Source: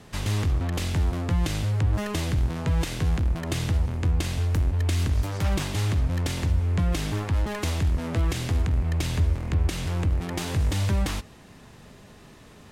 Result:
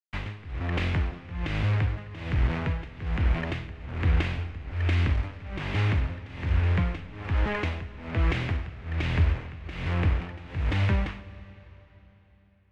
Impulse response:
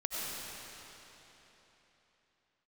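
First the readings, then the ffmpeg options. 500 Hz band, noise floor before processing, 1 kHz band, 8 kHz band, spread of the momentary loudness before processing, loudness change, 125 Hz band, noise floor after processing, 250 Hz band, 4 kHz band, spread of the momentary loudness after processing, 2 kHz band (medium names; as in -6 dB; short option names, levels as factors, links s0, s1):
-2.5 dB, -49 dBFS, -1.0 dB, under -20 dB, 2 LU, -2.5 dB, -2.5 dB, -57 dBFS, -3.5 dB, -5.0 dB, 11 LU, +2.5 dB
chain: -filter_complex "[0:a]acrusher=bits=5:mix=0:aa=0.000001,tremolo=f=1.2:d=0.92,lowpass=f=2300:t=q:w=1.8,asplit=2[s0][s1];[1:a]atrim=start_sample=2205[s2];[s1][s2]afir=irnorm=-1:irlink=0,volume=0.112[s3];[s0][s3]amix=inputs=2:normalize=0"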